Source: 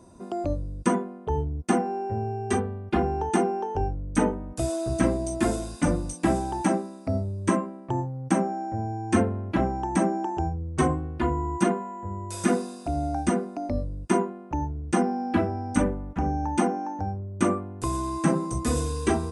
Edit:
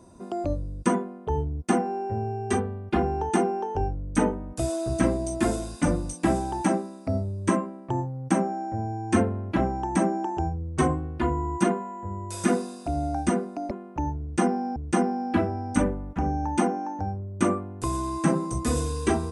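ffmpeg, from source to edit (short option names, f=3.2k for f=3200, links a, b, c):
-filter_complex "[0:a]asplit=3[a][b][c];[a]atrim=end=13.712[d];[b]atrim=start=14.258:end=15.312[e];[c]atrim=start=14.758[f];[d][e]acrossfade=d=0.004:c1=hsin:c2=hsin[g];[g][f]acrossfade=d=0.004:c1=hsin:c2=hsin"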